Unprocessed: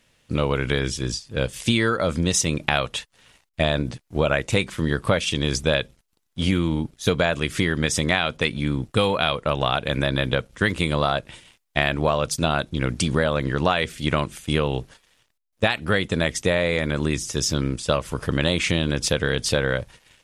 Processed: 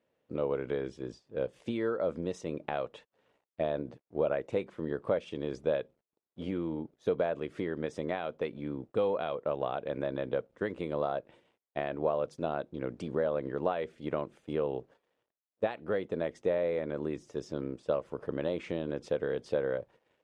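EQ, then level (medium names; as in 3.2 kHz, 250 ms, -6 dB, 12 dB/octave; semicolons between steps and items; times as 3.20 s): band-pass filter 480 Hz, Q 1.4; -5.5 dB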